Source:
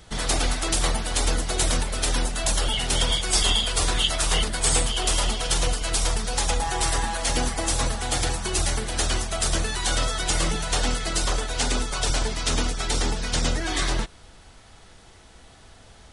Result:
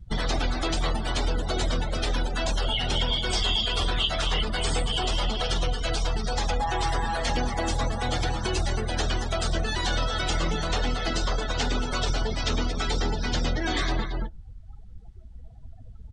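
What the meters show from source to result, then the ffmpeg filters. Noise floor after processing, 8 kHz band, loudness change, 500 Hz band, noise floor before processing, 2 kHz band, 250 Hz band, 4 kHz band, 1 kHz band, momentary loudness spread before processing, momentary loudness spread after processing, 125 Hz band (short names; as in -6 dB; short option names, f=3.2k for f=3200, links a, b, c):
-44 dBFS, -12.5 dB, -3.0 dB, -0.5 dB, -50 dBFS, -2.0 dB, 0.0 dB, -2.5 dB, -0.5 dB, 4 LU, 3 LU, -0.5 dB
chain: -filter_complex "[0:a]asoftclip=type=tanh:threshold=-14dB,acrossover=split=5900[a][b];[b]acompressor=threshold=-37dB:ratio=4:attack=1:release=60[c];[a][c]amix=inputs=2:normalize=0,asplit=2[d][e];[e]aecho=0:1:227:0.422[f];[d][f]amix=inputs=2:normalize=0,acompressor=threshold=-35dB:ratio=2.5,afftdn=nr=34:nf=-40,lowpass=9.9k,volume=9dB"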